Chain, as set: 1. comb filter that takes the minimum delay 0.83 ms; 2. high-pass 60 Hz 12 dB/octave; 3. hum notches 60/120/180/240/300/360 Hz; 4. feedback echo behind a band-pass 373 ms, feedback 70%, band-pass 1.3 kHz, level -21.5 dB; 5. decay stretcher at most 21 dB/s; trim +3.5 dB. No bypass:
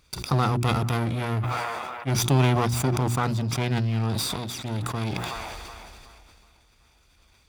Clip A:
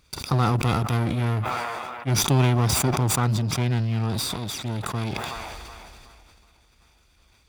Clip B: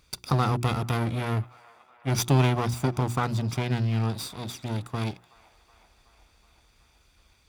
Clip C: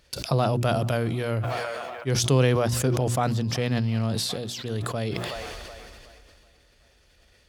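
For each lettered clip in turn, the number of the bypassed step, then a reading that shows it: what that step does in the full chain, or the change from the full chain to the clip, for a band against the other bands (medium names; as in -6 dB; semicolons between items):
3, 8 kHz band +4.0 dB; 5, 4 kHz band -2.0 dB; 1, 500 Hz band +5.5 dB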